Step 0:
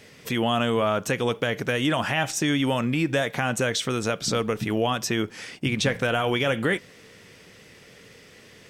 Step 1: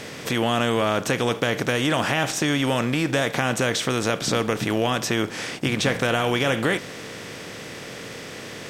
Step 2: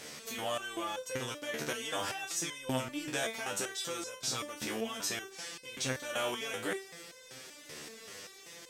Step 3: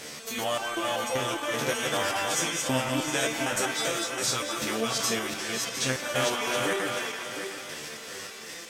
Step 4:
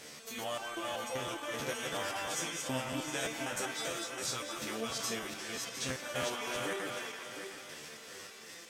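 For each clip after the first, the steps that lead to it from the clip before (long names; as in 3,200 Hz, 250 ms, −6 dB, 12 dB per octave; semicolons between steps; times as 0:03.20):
compressor on every frequency bin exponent 0.6; level −1.5 dB
bass and treble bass −6 dB, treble +9 dB; step-sequenced resonator 5.2 Hz 75–510 Hz; level −3 dB
feedback delay that plays each chunk backwards 356 ms, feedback 50%, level −3 dB; echo through a band-pass that steps 167 ms, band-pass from 1,000 Hz, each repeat 0.7 octaves, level −3 dB; level +6 dB
regular buffer underruns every 0.33 s repeat, from 0:00.93; level −9 dB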